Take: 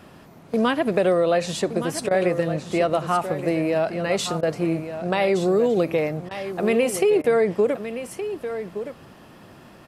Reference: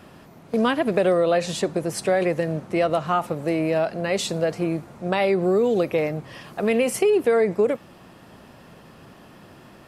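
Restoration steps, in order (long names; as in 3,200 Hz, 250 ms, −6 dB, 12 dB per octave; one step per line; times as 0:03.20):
repair the gap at 0:02.09/0:04.41/0:06.29/0:07.22, 18 ms
echo removal 1,169 ms −10.5 dB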